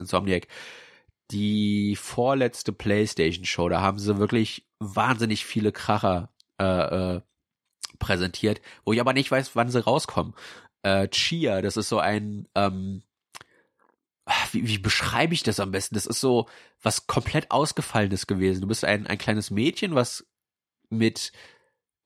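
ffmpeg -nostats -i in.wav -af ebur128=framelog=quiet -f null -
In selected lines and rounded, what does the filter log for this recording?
Integrated loudness:
  I:         -25.1 LUFS
  Threshold: -35.8 LUFS
Loudness range:
  LRA:         2.5 LU
  Threshold: -45.7 LUFS
  LRA low:   -27.2 LUFS
  LRA high:  -24.6 LUFS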